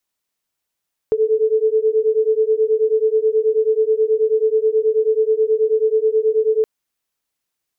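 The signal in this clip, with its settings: beating tones 433 Hz, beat 9.3 Hz, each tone -16.5 dBFS 5.52 s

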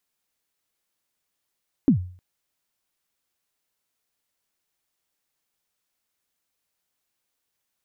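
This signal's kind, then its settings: kick drum length 0.31 s, from 310 Hz, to 90 Hz, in 0.101 s, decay 0.46 s, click off, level -10 dB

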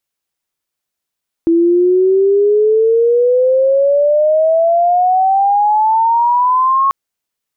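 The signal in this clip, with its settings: chirp logarithmic 330 Hz -> 1100 Hz -7.5 dBFS -> -9 dBFS 5.44 s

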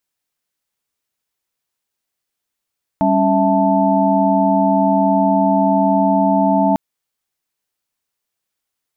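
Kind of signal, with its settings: chord G3/C#4/E5/A5 sine, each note -17 dBFS 3.75 s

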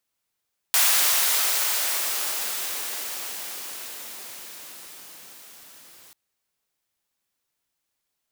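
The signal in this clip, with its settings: swept filtered noise white, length 5.39 s highpass, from 830 Hz, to 110 Hz, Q 0.73, exponential, gain ramp -32 dB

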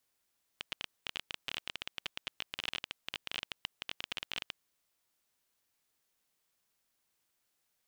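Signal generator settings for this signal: random clicks 19/s -19 dBFS 4.00 s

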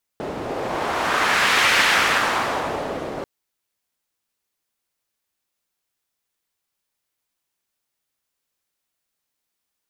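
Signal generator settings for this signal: wind-like swept noise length 3.04 s, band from 460 Hz, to 2000 Hz, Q 1.2, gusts 1, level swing 12 dB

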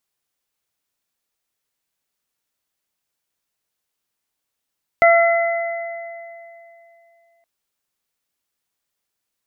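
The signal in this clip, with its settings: additive tone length 2.42 s, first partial 677 Hz, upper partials -9/-4.5 dB, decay 2.88 s, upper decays 1.72/2.66 s, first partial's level -9 dB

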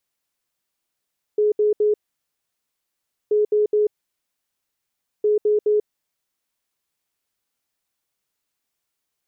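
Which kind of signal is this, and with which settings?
beep pattern sine 421 Hz, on 0.14 s, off 0.07 s, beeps 3, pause 1.37 s, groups 3, -14.5 dBFS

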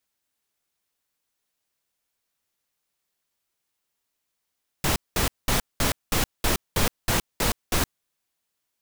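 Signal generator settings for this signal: noise bursts pink, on 0.12 s, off 0.20 s, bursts 10, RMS -22 dBFS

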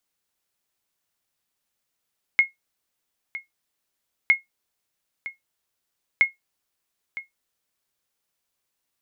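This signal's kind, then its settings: sonar ping 2160 Hz, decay 0.15 s, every 1.91 s, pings 3, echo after 0.96 s, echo -16 dB -8 dBFS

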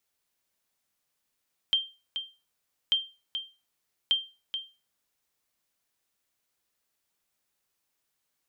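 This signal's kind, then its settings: sonar ping 3160 Hz, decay 0.30 s, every 1.19 s, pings 3, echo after 0.43 s, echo -9 dB -16.5 dBFS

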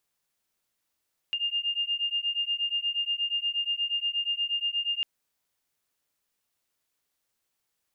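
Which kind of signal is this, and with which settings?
beating tones 2810 Hz, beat 8.4 Hz, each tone -29.5 dBFS 3.70 s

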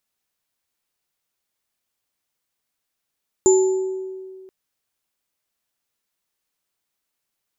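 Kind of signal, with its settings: sine partials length 1.03 s, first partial 378 Hz, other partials 863/7110 Hz, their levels -15/-6 dB, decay 1.99 s, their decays 1.07/0.65 s, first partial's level -10 dB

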